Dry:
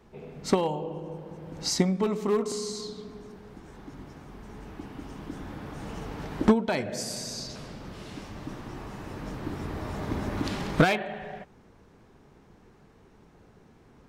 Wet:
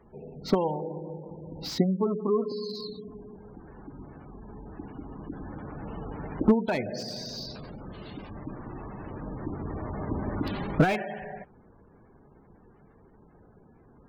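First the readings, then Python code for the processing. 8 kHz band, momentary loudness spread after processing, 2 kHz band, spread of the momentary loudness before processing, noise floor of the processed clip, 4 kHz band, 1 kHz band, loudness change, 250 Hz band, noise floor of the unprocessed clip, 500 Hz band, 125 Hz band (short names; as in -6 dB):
-12.5 dB, 21 LU, -3.5 dB, 21 LU, -57 dBFS, -3.5 dB, -1.5 dB, -1.0 dB, 0.0 dB, -57 dBFS, -0.5 dB, 0.0 dB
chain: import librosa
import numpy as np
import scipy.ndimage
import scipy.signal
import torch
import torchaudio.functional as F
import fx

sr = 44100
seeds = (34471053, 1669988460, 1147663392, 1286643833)

y = fx.high_shelf_res(x, sr, hz=5700.0, db=-8.0, q=1.5)
y = fx.spec_gate(y, sr, threshold_db=-20, keep='strong')
y = fx.slew_limit(y, sr, full_power_hz=86.0)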